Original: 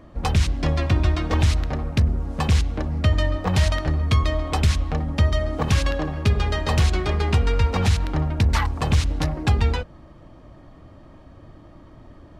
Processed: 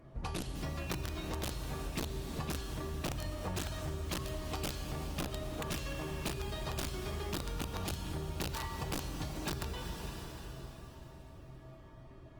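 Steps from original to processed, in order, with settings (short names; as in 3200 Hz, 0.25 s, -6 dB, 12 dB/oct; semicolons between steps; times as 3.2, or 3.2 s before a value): resonator 130 Hz, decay 0.57 s, harmonics odd, mix 90%; wrapped overs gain 27 dB; dynamic EQ 2100 Hz, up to -5 dB, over -55 dBFS, Q 3.8; on a send: darkening echo 0.186 s, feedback 84%, low-pass 1000 Hz, level -20 dB; on the sum: Schroeder reverb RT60 3.7 s, combs from 29 ms, DRR 8 dB; compressor 8:1, threshold -42 dBFS, peak gain reduction 12 dB; gain +7 dB; Opus 24 kbps 48000 Hz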